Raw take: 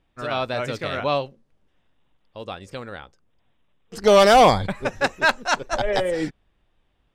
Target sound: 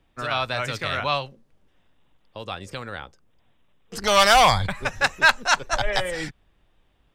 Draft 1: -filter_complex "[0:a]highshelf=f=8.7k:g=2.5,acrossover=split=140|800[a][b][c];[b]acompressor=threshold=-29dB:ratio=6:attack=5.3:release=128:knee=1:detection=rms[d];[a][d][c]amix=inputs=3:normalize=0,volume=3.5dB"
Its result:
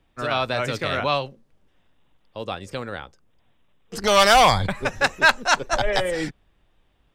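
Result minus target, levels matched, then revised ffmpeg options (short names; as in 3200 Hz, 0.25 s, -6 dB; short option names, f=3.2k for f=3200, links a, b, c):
compressor: peak gain reduction -8.5 dB
-filter_complex "[0:a]highshelf=f=8.7k:g=2.5,acrossover=split=140|800[a][b][c];[b]acompressor=threshold=-39dB:ratio=6:attack=5.3:release=128:knee=1:detection=rms[d];[a][d][c]amix=inputs=3:normalize=0,volume=3.5dB"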